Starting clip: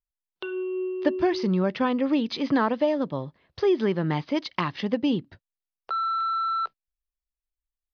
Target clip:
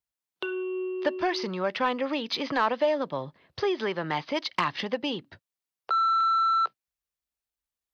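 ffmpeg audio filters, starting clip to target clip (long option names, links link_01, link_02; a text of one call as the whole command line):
ffmpeg -i in.wav -filter_complex "[0:a]highpass=91,acrossover=split=510[link_01][link_02];[link_01]acompressor=threshold=-38dB:ratio=10[link_03];[link_03][link_02]amix=inputs=2:normalize=0,asoftclip=type=tanh:threshold=-17.5dB,volume=3.5dB" out.wav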